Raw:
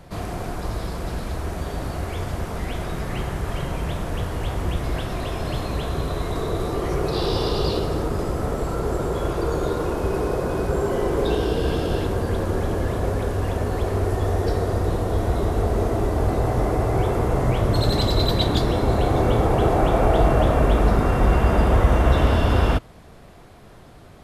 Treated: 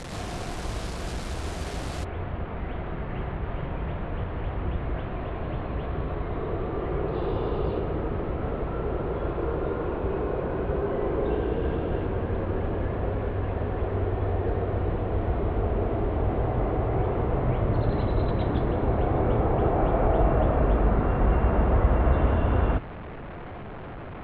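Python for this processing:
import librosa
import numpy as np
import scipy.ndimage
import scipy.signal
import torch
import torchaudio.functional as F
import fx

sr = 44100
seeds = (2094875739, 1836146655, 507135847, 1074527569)

y = fx.delta_mod(x, sr, bps=64000, step_db=-26.5)
y = fx.bessel_lowpass(y, sr, hz=fx.steps((0.0, 8200.0), (2.03, 1700.0)), order=8)
y = F.gain(torch.from_numpy(y), -4.5).numpy()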